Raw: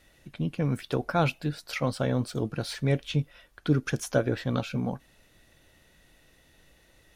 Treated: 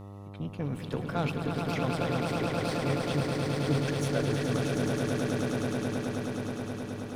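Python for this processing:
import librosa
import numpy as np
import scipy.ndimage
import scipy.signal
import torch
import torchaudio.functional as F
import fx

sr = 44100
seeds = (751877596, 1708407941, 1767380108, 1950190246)

y = fx.echo_swell(x, sr, ms=106, loudest=8, wet_db=-5.5)
y = fx.cheby_harmonics(y, sr, harmonics=(8,), levels_db=(-26,), full_scale_db=-9.0)
y = fx.dmg_buzz(y, sr, base_hz=100.0, harmonics=13, level_db=-37.0, tilt_db=-6, odd_only=False)
y = y * 10.0 ** (-7.0 / 20.0)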